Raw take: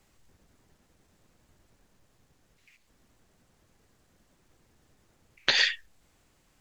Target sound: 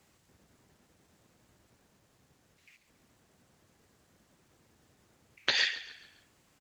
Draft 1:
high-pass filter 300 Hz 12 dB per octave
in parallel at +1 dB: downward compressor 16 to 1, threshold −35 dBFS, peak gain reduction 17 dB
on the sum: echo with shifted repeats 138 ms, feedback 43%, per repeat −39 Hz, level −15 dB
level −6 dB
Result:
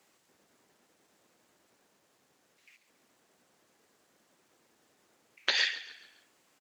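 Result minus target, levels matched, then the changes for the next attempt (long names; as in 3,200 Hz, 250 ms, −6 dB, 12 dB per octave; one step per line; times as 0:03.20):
125 Hz band −11.5 dB
change: high-pass filter 79 Hz 12 dB per octave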